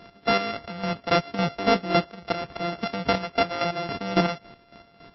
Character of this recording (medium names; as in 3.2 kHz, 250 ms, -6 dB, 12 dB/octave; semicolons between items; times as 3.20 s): a buzz of ramps at a fixed pitch in blocks of 64 samples; chopped level 3.6 Hz, depth 65%, duty 35%; MP3